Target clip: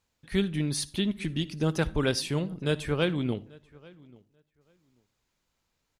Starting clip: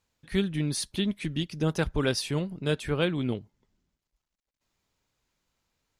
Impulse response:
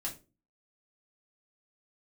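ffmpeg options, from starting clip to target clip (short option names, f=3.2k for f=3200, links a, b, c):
-filter_complex "[0:a]asplit=2[a][b];[b]adelay=838,lowpass=f=3.2k:p=1,volume=-24dB,asplit=2[c][d];[d]adelay=838,lowpass=f=3.2k:p=1,volume=0.17[e];[a][c][e]amix=inputs=3:normalize=0,asplit=2[f][g];[1:a]atrim=start_sample=2205,adelay=56[h];[g][h]afir=irnorm=-1:irlink=0,volume=-20dB[i];[f][i]amix=inputs=2:normalize=0"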